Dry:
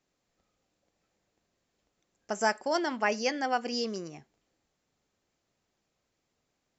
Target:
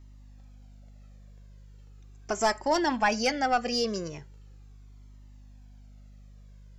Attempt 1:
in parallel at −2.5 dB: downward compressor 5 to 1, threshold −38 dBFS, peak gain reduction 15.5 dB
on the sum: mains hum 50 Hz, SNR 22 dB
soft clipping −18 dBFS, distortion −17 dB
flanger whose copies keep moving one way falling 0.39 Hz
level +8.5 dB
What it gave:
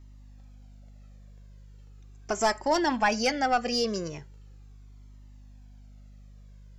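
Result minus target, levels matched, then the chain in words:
downward compressor: peak gain reduction −5 dB
in parallel at −2.5 dB: downward compressor 5 to 1, threshold −44.5 dBFS, peak gain reduction 20.5 dB
on the sum: mains hum 50 Hz, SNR 22 dB
soft clipping −18 dBFS, distortion −17 dB
flanger whose copies keep moving one way falling 0.39 Hz
level +8.5 dB

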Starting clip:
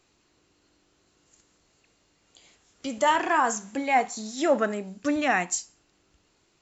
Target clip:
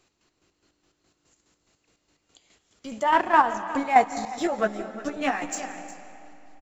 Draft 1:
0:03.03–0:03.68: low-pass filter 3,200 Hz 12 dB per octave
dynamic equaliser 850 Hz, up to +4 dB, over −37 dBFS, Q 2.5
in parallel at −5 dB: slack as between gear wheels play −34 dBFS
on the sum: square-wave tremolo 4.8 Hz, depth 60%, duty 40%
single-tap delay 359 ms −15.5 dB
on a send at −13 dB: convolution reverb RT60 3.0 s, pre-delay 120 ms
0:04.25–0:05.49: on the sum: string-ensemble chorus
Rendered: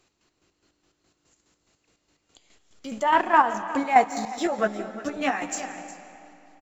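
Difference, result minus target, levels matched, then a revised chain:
slack as between gear wheels: distortion −9 dB
0:03.03–0:03.68: low-pass filter 3,200 Hz 12 dB per octave
dynamic equaliser 850 Hz, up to +4 dB, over −37 dBFS, Q 2.5
in parallel at −5 dB: slack as between gear wheels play −24 dBFS
on the sum: square-wave tremolo 4.8 Hz, depth 60%, duty 40%
single-tap delay 359 ms −15.5 dB
on a send at −13 dB: convolution reverb RT60 3.0 s, pre-delay 120 ms
0:04.25–0:05.49: on the sum: string-ensemble chorus

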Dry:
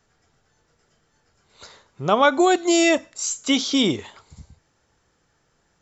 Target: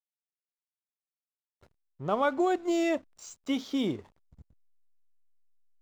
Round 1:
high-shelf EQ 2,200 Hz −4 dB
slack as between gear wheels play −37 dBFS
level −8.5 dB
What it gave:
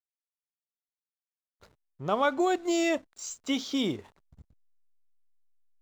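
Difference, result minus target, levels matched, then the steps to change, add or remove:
4,000 Hz band +5.0 dB
change: high-shelf EQ 2,200 Hz −11.5 dB

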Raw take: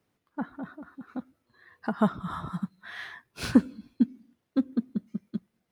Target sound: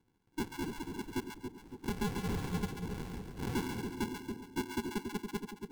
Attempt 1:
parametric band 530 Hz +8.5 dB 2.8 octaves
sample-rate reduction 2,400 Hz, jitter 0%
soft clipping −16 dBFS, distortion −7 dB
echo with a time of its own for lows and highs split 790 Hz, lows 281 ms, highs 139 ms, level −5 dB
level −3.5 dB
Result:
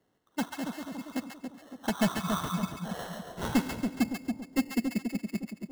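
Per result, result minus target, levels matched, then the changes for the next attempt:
sample-rate reduction: distortion −18 dB; soft clipping: distortion −6 dB
change: sample-rate reduction 620 Hz, jitter 0%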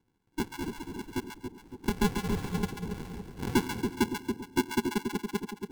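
soft clipping: distortion −6 dB
change: soft clipping −27 dBFS, distortion −1 dB

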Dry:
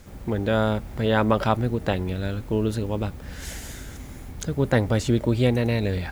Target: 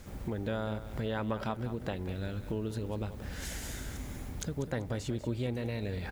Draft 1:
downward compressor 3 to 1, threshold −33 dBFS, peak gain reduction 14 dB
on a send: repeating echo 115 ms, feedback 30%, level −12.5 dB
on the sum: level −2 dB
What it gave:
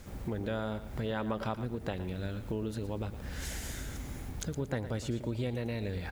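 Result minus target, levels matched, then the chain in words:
echo 78 ms early
downward compressor 3 to 1, threshold −33 dBFS, peak gain reduction 14 dB
on a send: repeating echo 193 ms, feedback 30%, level −12.5 dB
on the sum: level −2 dB

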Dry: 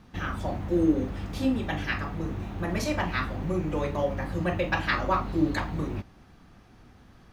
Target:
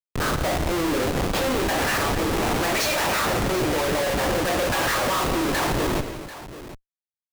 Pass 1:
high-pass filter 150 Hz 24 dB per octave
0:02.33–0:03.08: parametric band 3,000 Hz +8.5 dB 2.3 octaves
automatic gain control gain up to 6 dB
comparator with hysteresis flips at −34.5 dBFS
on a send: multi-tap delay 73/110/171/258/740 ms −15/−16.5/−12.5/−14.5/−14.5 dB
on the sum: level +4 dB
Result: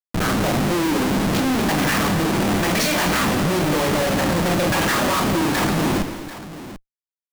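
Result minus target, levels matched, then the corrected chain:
125 Hz band +2.5 dB
high-pass filter 410 Hz 24 dB per octave
0:02.33–0:03.08: parametric band 3,000 Hz +8.5 dB 2.3 octaves
automatic gain control gain up to 6 dB
comparator with hysteresis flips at −34.5 dBFS
on a send: multi-tap delay 73/110/171/258/740 ms −15/−16.5/−12.5/−14.5/−14.5 dB
on the sum: level +4 dB

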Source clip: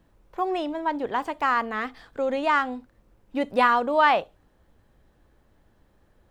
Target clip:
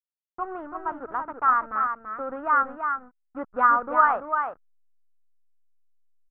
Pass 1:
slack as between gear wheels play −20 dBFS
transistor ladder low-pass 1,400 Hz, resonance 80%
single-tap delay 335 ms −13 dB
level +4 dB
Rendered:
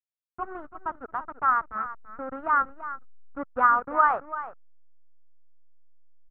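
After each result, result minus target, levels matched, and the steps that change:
echo-to-direct −7 dB; slack as between gear wheels: distortion +7 dB
change: single-tap delay 335 ms −6 dB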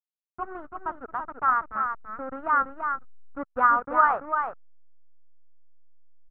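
slack as between gear wheels: distortion +7 dB
change: slack as between gear wheels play −26.5 dBFS

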